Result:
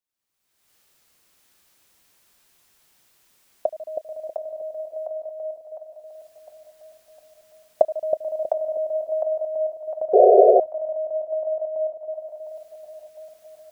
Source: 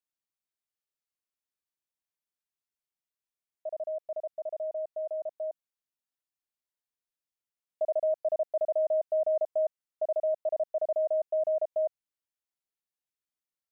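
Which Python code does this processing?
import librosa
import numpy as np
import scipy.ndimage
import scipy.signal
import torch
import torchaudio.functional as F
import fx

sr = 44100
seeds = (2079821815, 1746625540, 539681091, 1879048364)

y = fx.recorder_agc(x, sr, target_db=-30.0, rise_db_per_s=41.0, max_gain_db=30)
y = fx.echo_split(y, sr, split_hz=620.0, low_ms=320, high_ms=706, feedback_pct=52, wet_db=-4.5)
y = fx.spec_paint(y, sr, seeds[0], shape='noise', start_s=10.13, length_s=0.47, low_hz=370.0, high_hz=740.0, level_db=-12.0)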